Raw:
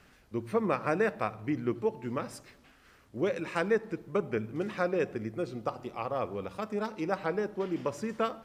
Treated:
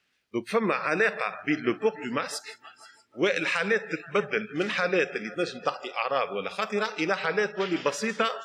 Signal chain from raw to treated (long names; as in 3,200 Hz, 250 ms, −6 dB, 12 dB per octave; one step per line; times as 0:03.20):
meter weighting curve D
surface crackle 180 per second −52 dBFS
dynamic equaliser 1,500 Hz, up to +4 dB, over −43 dBFS, Q 1.7
brickwall limiter −18.5 dBFS, peak gain reduction 10.5 dB
on a send: echo machine with several playback heads 159 ms, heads first and third, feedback 62%, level −19 dB
on the sum: noise reduction from a noise print of the clip's start 23 dB
level +5.5 dB